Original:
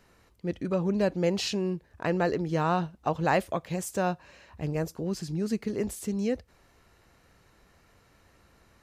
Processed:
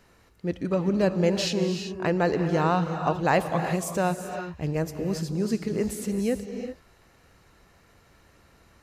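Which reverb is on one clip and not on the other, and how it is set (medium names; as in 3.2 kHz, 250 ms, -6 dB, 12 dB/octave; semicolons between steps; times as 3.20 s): gated-style reverb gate 410 ms rising, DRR 7 dB; trim +2.5 dB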